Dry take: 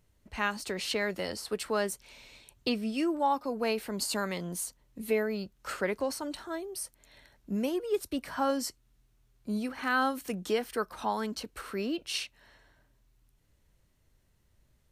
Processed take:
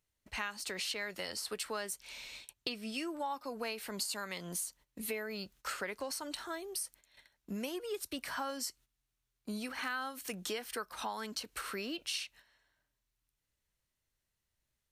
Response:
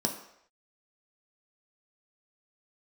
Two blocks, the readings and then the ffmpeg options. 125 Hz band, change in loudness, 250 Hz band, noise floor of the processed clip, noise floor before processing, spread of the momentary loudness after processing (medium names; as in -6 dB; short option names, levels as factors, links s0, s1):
-9.0 dB, -6.5 dB, -10.0 dB, under -85 dBFS, -69 dBFS, 5 LU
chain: -af "agate=range=0.178:threshold=0.00178:ratio=16:detection=peak,tiltshelf=f=880:g=-6,acompressor=threshold=0.0126:ratio=4,volume=1.12"